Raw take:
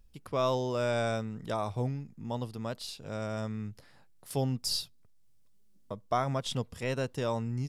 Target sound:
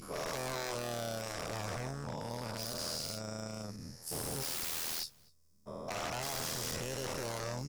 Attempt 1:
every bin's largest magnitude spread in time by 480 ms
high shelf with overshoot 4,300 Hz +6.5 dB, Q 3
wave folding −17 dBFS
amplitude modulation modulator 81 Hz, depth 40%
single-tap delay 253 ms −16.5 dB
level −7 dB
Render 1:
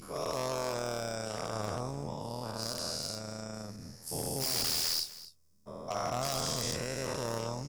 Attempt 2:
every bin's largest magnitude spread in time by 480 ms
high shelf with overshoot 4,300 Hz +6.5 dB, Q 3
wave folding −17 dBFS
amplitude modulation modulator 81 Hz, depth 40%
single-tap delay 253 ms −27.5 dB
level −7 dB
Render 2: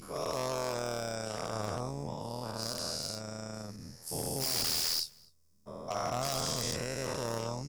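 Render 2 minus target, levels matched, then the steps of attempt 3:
wave folding: distortion −7 dB
every bin's largest magnitude spread in time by 480 ms
high shelf with overshoot 4,300 Hz +6.5 dB, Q 3
wave folding −23.5 dBFS
amplitude modulation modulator 81 Hz, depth 40%
single-tap delay 253 ms −27.5 dB
level −7 dB

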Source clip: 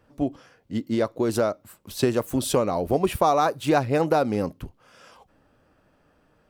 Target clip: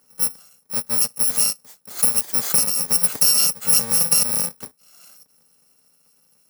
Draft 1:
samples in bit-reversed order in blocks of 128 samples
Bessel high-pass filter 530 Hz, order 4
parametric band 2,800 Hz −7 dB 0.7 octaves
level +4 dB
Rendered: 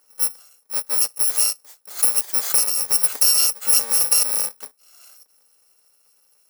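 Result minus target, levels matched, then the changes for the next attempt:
250 Hz band −14.5 dB
change: Bessel high-pass filter 240 Hz, order 4

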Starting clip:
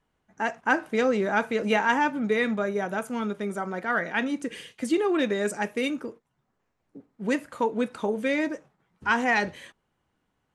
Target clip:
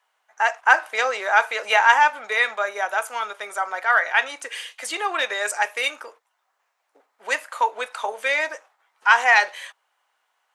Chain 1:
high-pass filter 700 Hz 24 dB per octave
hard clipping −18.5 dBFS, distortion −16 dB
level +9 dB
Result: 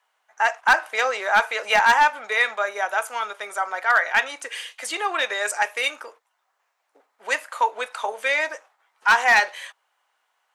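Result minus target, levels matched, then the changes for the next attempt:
hard clipping: distortion +37 dB
change: hard clipping −11 dBFS, distortion −53 dB

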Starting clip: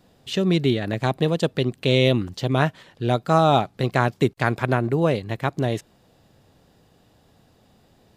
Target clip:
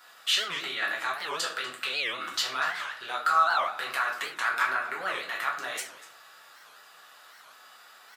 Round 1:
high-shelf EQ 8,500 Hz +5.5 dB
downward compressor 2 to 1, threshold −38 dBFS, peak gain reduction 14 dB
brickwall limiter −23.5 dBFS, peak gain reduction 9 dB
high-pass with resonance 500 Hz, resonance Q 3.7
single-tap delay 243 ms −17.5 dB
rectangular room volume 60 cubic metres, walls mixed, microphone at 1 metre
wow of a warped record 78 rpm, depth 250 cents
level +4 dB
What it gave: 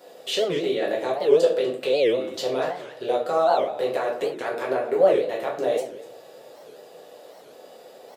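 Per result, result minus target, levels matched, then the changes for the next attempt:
500 Hz band +16.0 dB; downward compressor: peak gain reduction +14 dB
change: high-pass with resonance 1,300 Hz, resonance Q 3.7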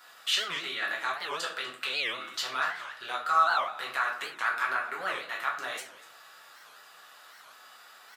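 downward compressor: peak gain reduction +14 dB
remove: downward compressor 2 to 1, threshold −38 dBFS, peak gain reduction 14 dB

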